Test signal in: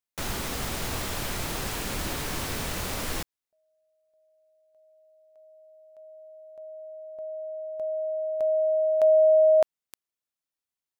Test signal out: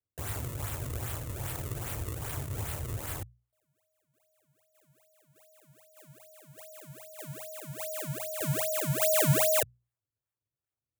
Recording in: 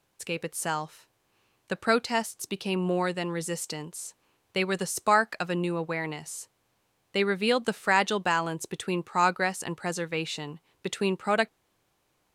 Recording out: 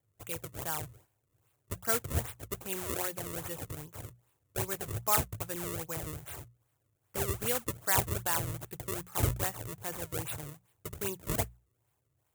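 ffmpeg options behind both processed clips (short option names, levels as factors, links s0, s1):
-af "acrusher=samples=32:mix=1:aa=0.000001:lfo=1:lforange=51.2:lforate=2.5,lowshelf=f=150:t=q:w=3:g=8,bandreject=f=60:t=h:w=6,bandreject=f=120:t=h:w=6,bandreject=f=180:t=h:w=6,aexciter=amount=4.8:drive=3.1:freq=6700,highpass=64,volume=0.355"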